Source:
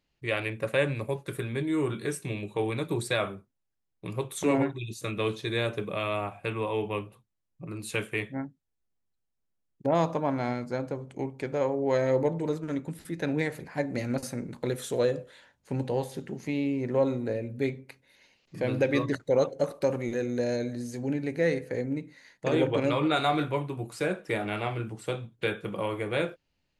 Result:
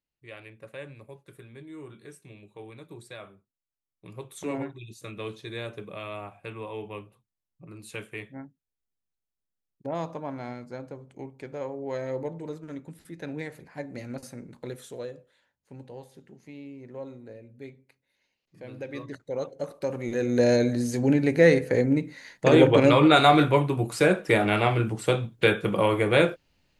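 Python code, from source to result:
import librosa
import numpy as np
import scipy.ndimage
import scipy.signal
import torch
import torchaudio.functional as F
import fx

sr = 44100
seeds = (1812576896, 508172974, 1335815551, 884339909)

y = fx.gain(x, sr, db=fx.line((3.34, -15.0), (4.39, -7.0), (14.73, -7.0), (15.21, -14.0), (18.62, -14.0), (19.92, -3.0), (20.45, 8.5)))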